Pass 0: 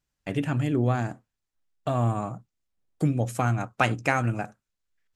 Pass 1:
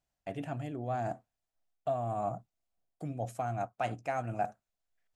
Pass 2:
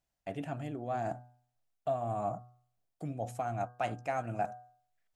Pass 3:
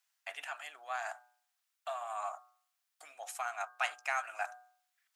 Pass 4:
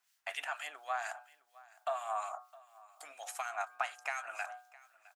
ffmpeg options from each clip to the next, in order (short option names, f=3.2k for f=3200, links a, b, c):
-af "areverse,acompressor=threshold=-31dB:ratio=6,areverse,equalizer=f=690:w=3.2:g=14.5,volume=-5dB"
-af "bandreject=f=122.5:t=h:w=4,bandreject=f=245:t=h:w=4,bandreject=f=367.5:t=h:w=4,bandreject=f=490:t=h:w=4,bandreject=f=612.5:t=h:w=4,bandreject=f=735:t=h:w=4,bandreject=f=857.5:t=h:w=4,bandreject=f=980:t=h:w=4,bandreject=f=1.1025k:t=h:w=4,bandreject=f=1.225k:t=h:w=4,bandreject=f=1.3475k:t=h:w=4,bandreject=f=1.47k:t=h:w=4,bandreject=f=1.5925k:t=h:w=4"
-af "highpass=f=1.1k:w=0.5412,highpass=f=1.1k:w=1.3066,volume=8.5dB"
-filter_complex "[0:a]acompressor=threshold=-37dB:ratio=6,acrossover=split=1700[a][b];[a]aeval=exprs='val(0)*(1-0.7/2+0.7/2*cos(2*PI*4.2*n/s))':c=same[c];[b]aeval=exprs='val(0)*(1-0.7/2-0.7/2*cos(2*PI*4.2*n/s))':c=same[d];[c][d]amix=inputs=2:normalize=0,aecho=1:1:661:0.0841,volume=7.5dB"